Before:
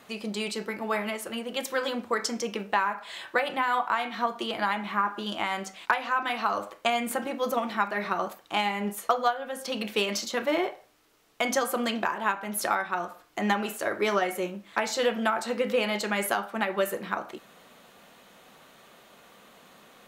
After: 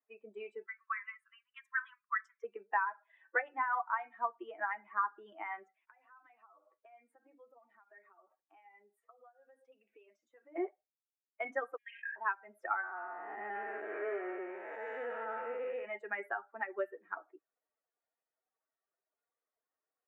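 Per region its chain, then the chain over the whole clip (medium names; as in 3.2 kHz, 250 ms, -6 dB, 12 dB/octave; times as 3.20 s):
0.66–2.44 s: brick-wall FIR high-pass 980 Hz + dynamic bell 1.7 kHz, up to +3 dB, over -44 dBFS, Q 2
5.89–10.56 s: compression 8:1, threshold -38 dBFS + treble shelf 4.2 kHz +7.5 dB
11.76–12.16 s: Chebyshev high-pass 1.6 kHz, order 10 + distance through air 57 m + decay stretcher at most 30 dB/s
12.83–15.85 s: spectral blur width 474 ms + bass shelf 320 Hz -8 dB + waveshaping leveller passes 3
whole clip: expander on every frequency bin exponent 2; elliptic band-pass 350–1900 Hz, stop band 40 dB; dynamic bell 580 Hz, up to -7 dB, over -44 dBFS, Q 1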